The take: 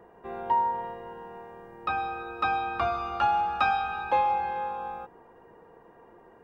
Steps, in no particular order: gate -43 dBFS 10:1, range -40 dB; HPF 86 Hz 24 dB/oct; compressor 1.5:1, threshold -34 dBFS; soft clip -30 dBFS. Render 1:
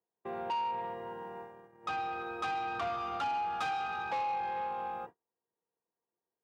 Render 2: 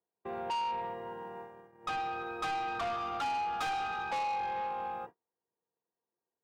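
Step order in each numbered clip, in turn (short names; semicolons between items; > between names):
gate > compressor > soft clip > HPF; HPF > gate > soft clip > compressor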